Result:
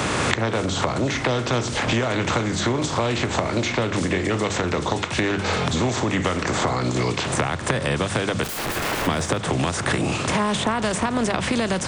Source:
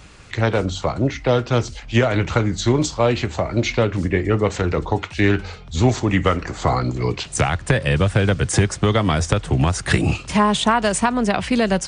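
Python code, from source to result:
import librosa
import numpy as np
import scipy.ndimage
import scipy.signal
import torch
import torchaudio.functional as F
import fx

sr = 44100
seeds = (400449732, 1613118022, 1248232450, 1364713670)

p1 = fx.bin_compress(x, sr, power=0.6)
p2 = fx.recorder_agc(p1, sr, target_db=-6.0, rise_db_per_s=46.0, max_gain_db=30)
p3 = scipy.signal.sosfilt(scipy.signal.butter(2, 94.0, 'highpass', fs=sr, output='sos'), p2)
p4 = fx.hum_notches(p3, sr, base_hz=50, count=4)
p5 = fx.overflow_wrap(p4, sr, gain_db=18.0, at=(8.43, 9.06), fade=0.02)
p6 = p5 + fx.echo_single(p5, sr, ms=305, db=-22.0, dry=0)
p7 = fx.band_squash(p6, sr, depth_pct=100)
y = p7 * librosa.db_to_amplitude(-8.5)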